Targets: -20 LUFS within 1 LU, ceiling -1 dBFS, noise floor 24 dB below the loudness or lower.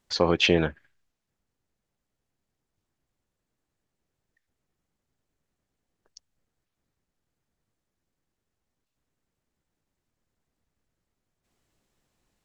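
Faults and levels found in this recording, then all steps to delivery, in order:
loudness -23.0 LUFS; peak -6.0 dBFS; loudness target -20.0 LUFS
-> gain +3 dB

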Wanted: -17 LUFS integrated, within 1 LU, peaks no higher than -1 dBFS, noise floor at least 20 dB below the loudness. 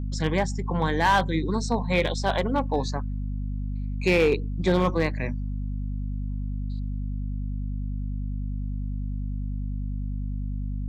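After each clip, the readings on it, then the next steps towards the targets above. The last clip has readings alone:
clipped 0.4%; flat tops at -14.0 dBFS; hum 50 Hz; harmonics up to 250 Hz; hum level -27 dBFS; loudness -27.5 LUFS; peak -14.0 dBFS; loudness target -17.0 LUFS
-> clip repair -14 dBFS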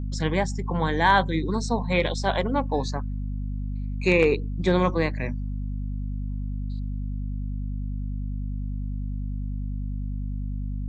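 clipped 0.0%; hum 50 Hz; harmonics up to 250 Hz; hum level -27 dBFS
-> notches 50/100/150/200/250 Hz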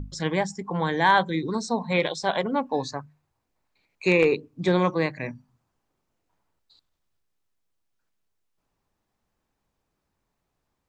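hum none; loudness -24.5 LUFS; peak -5.5 dBFS; loudness target -17.0 LUFS
-> gain +7.5 dB; limiter -1 dBFS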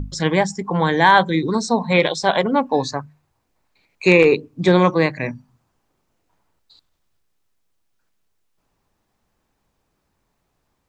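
loudness -17.5 LUFS; peak -1.0 dBFS; noise floor -71 dBFS

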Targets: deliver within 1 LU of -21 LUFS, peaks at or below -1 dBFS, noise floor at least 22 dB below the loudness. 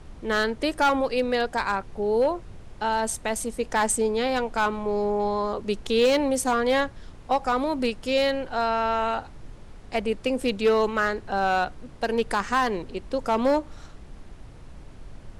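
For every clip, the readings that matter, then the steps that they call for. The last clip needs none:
clipped 0.5%; flat tops at -14.5 dBFS; noise floor -45 dBFS; noise floor target -47 dBFS; loudness -25.0 LUFS; peak -14.5 dBFS; loudness target -21.0 LUFS
-> clip repair -14.5 dBFS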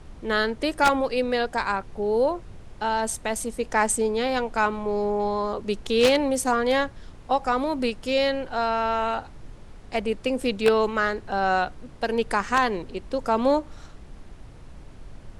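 clipped 0.0%; noise floor -45 dBFS; noise floor target -47 dBFS
-> noise print and reduce 6 dB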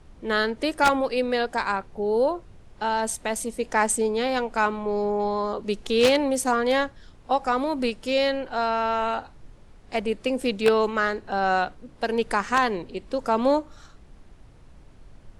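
noise floor -50 dBFS; loudness -24.5 LUFS; peak -5.5 dBFS; loudness target -21.0 LUFS
-> gain +3.5 dB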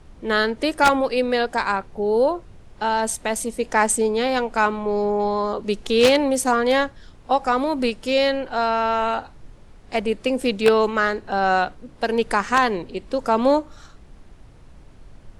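loudness -21.0 LUFS; peak -2.0 dBFS; noise floor -47 dBFS

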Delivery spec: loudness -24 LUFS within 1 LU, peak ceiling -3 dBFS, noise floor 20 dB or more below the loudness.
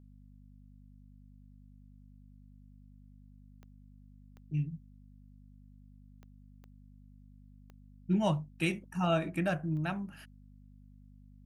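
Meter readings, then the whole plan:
clicks 6; hum 50 Hz; harmonics up to 250 Hz; hum level -52 dBFS; loudness -33.5 LUFS; peak -16.5 dBFS; loudness target -24.0 LUFS
-> de-click; de-hum 50 Hz, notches 5; gain +9.5 dB

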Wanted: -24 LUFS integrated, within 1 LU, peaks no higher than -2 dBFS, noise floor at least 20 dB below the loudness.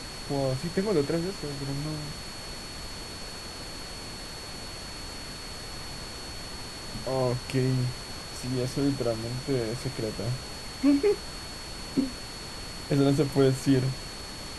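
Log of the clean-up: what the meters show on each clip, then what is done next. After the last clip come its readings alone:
steady tone 4400 Hz; tone level -42 dBFS; noise floor -40 dBFS; noise floor target -51 dBFS; loudness -30.5 LUFS; peak -11.0 dBFS; loudness target -24.0 LUFS
-> notch 4400 Hz, Q 30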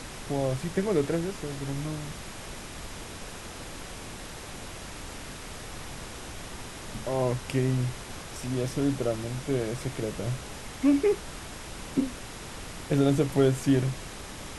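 steady tone none; noise floor -41 dBFS; noise floor target -51 dBFS
-> noise print and reduce 10 dB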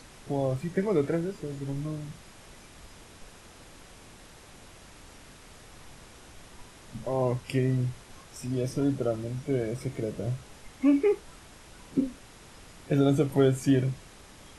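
noise floor -51 dBFS; loudness -29.0 LUFS; peak -11.0 dBFS; loudness target -24.0 LUFS
-> gain +5 dB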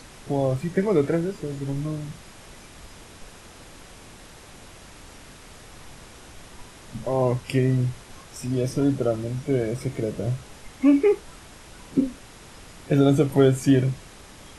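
loudness -24.0 LUFS; peak -6.0 dBFS; noise floor -46 dBFS

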